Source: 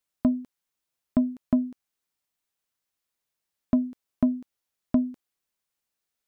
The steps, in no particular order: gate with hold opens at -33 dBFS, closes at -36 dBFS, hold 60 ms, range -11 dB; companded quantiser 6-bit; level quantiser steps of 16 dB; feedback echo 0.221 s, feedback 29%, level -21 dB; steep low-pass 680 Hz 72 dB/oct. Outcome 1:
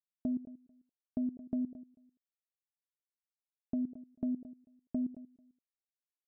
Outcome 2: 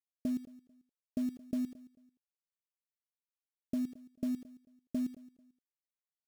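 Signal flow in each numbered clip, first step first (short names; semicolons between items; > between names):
companded quantiser > steep low-pass > gate with hold > feedback echo > level quantiser; gate with hold > steep low-pass > level quantiser > companded quantiser > feedback echo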